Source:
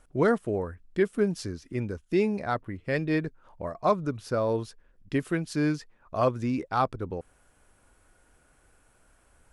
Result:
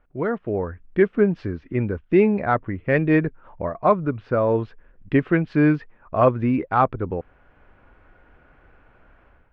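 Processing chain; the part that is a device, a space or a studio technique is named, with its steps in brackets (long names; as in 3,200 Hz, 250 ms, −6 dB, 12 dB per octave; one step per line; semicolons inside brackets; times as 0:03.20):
action camera in a waterproof case (low-pass filter 2,600 Hz 24 dB per octave; automatic gain control gain up to 12.5 dB; level −3 dB; AAC 128 kbit/s 48,000 Hz)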